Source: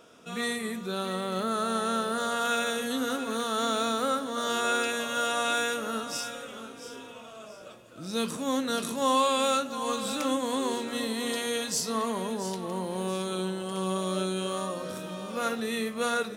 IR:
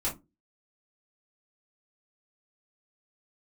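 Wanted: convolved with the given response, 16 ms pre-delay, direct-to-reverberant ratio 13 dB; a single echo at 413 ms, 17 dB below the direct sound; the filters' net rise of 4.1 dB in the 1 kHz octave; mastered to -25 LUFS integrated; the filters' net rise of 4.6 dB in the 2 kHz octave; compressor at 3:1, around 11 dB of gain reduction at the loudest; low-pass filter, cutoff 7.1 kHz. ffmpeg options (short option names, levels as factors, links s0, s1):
-filter_complex "[0:a]lowpass=7100,equalizer=f=1000:t=o:g=3.5,equalizer=f=2000:t=o:g=5,acompressor=threshold=0.0251:ratio=3,aecho=1:1:413:0.141,asplit=2[s0][s1];[1:a]atrim=start_sample=2205,adelay=16[s2];[s1][s2]afir=irnorm=-1:irlink=0,volume=0.119[s3];[s0][s3]amix=inputs=2:normalize=0,volume=2.66"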